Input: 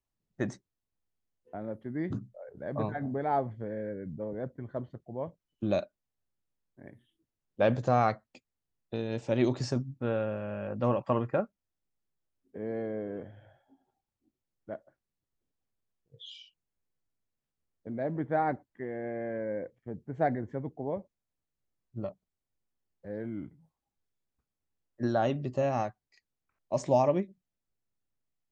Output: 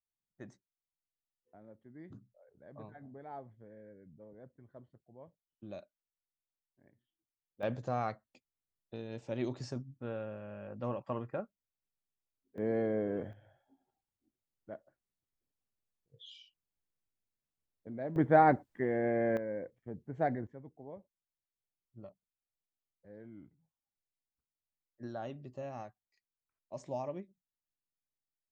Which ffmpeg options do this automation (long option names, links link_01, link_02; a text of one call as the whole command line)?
ffmpeg -i in.wav -af "asetnsamples=nb_out_samples=441:pad=0,asendcmd='7.63 volume volume -9.5dB;12.58 volume volume 2.5dB;13.33 volume volume -6dB;18.16 volume volume 5dB;19.37 volume volume -4dB;20.47 volume volume -14dB',volume=-17.5dB" out.wav